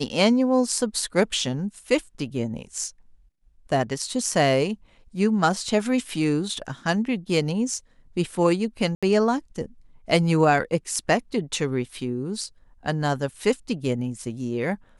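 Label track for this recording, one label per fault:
8.950000	9.030000	gap 76 ms

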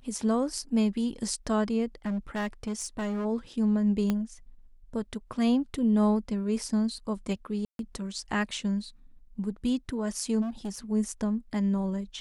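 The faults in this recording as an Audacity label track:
2.050000	3.260000	clipped -27 dBFS
4.100000	4.100000	pop -15 dBFS
7.650000	7.790000	gap 0.142 s
10.410000	10.780000	clipped -30 dBFS

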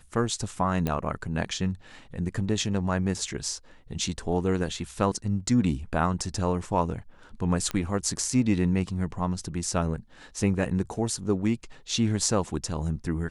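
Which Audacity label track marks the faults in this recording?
0.870000	0.870000	pop -14 dBFS
7.710000	7.710000	pop -15 dBFS

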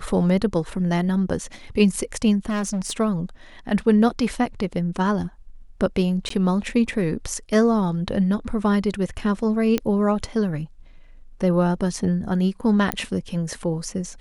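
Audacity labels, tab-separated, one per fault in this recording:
2.490000	3.000000	clipped -21.5 dBFS
6.290000	6.300000	gap 14 ms
9.780000	9.780000	pop -9 dBFS
12.920000	12.920000	pop -5 dBFS

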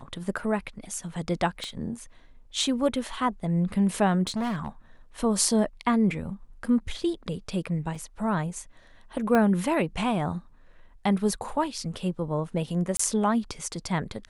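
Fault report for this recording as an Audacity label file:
1.640000	1.640000	pop -22 dBFS
4.270000	4.680000	clipped -25.5 dBFS
7.950000	7.950000	gap 4.8 ms
9.350000	9.350000	pop -12 dBFS
12.970000	12.990000	gap 24 ms

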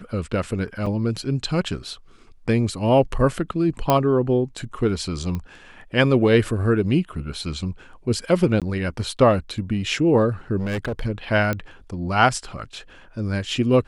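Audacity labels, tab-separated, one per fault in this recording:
0.860000	0.860000	gap 4.7 ms
3.900000	3.900000	pop -4 dBFS
5.350000	5.350000	pop -17 dBFS
8.600000	8.620000	gap 17 ms
10.590000	11.040000	clipped -22 dBFS
11.530000	11.530000	pop -11 dBFS

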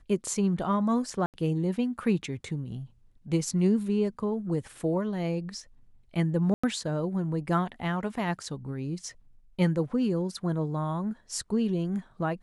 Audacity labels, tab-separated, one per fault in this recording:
1.260000	1.340000	gap 78 ms
6.540000	6.630000	gap 95 ms

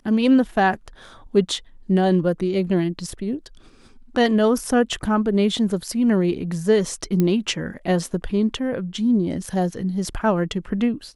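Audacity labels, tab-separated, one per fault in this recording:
7.200000	7.200000	pop -9 dBFS

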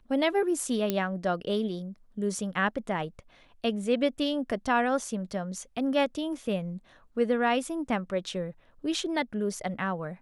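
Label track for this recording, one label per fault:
0.900000	0.900000	pop -12 dBFS

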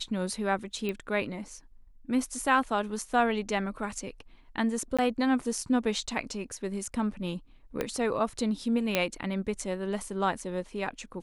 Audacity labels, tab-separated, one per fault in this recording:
0.890000	0.890000	pop -20 dBFS
4.970000	4.990000	gap 16 ms
7.810000	7.810000	pop -15 dBFS
8.950000	8.950000	pop -9 dBFS

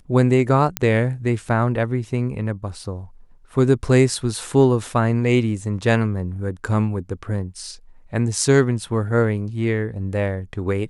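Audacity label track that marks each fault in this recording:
0.770000	0.770000	pop -3 dBFS

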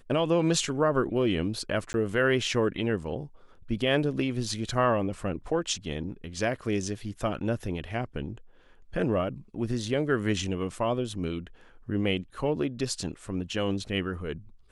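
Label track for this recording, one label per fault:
1.930000	1.940000	gap 11 ms

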